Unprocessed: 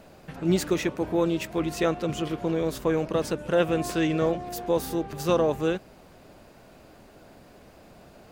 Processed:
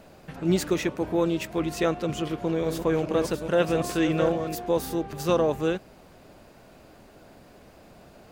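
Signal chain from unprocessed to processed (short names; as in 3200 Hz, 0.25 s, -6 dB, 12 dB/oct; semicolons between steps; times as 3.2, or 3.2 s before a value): 2.21–4.55 reverse delay 0.424 s, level -7 dB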